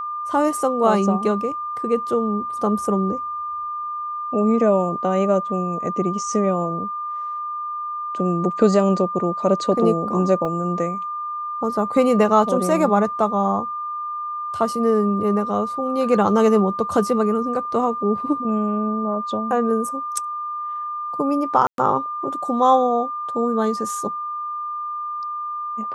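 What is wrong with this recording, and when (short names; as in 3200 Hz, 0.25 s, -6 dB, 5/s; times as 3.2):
tone 1200 Hz -25 dBFS
10.45 gap 2.3 ms
21.67–21.78 gap 0.112 s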